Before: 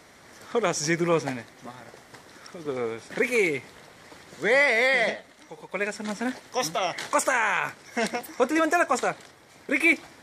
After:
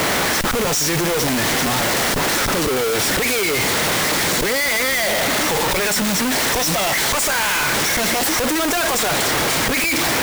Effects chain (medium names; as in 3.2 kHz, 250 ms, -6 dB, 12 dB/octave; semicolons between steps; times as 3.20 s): high-pass 100 Hz 12 dB/octave; treble shelf 2.9 kHz +6 dB; slow attack 189 ms; level rider gain up to 6 dB; Schmitt trigger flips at -53 dBFS; modulation noise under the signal 11 dB; trim +3.5 dB